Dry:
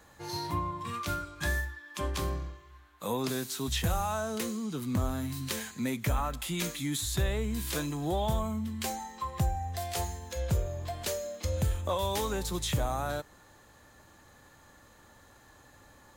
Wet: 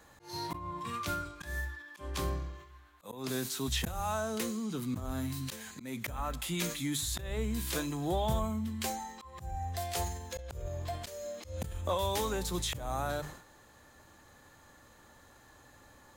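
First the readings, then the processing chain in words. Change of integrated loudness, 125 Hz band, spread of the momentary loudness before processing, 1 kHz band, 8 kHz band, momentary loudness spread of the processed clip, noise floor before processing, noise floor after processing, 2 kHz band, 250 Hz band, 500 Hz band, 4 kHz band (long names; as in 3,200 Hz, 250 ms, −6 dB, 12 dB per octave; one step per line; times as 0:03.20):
−3.0 dB, −5.0 dB, 7 LU, −2.5 dB, −2.0 dB, 10 LU, −58 dBFS, −59 dBFS, −3.0 dB, −2.5 dB, −2.5 dB, −1.5 dB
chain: mains-hum notches 50/100/150/200 Hz
volume swells 234 ms
level that may fall only so fast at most 93 dB per second
level −1 dB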